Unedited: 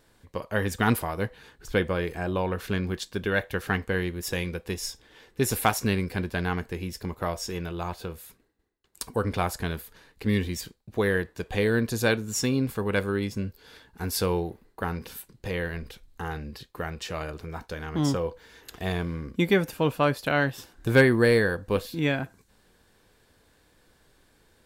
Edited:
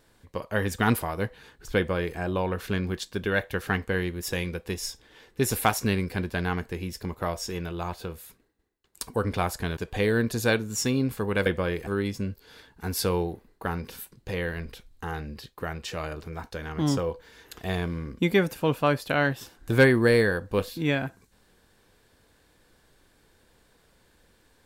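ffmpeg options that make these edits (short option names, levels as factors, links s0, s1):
-filter_complex "[0:a]asplit=4[s0][s1][s2][s3];[s0]atrim=end=9.772[s4];[s1]atrim=start=11.348:end=13.042[s5];[s2]atrim=start=1.768:end=2.182[s6];[s3]atrim=start=13.038[s7];[s4][s5]acrossfade=d=0.004:c1=hsin:c2=hsin[s8];[s8][s6]acrossfade=d=0.004:c1=hsin:c2=hsin[s9];[s9][s7]acrossfade=d=0.004:c1=hsin:c2=hsin"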